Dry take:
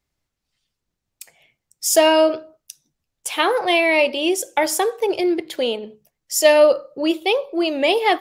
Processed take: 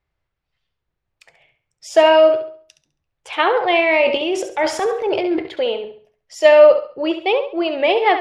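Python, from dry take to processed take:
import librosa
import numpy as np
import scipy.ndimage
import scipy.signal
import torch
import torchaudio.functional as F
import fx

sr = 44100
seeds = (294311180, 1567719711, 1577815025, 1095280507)

y = scipy.signal.sosfilt(scipy.signal.butter(2, 2500.0, 'lowpass', fs=sr, output='sos'), x)
y = fx.peak_eq(y, sr, hz=240.0, db=-11.0, octaves=0.73)
y = fx.transient(y, sr, attack_db=-7, sustain_db=9, at=(3.79, 5.49))
y = fx.room_flutter(y, sr, wall_m=11.7, rt60_s=0.43)
y = y * librosa.db_to_amplitude(3.0)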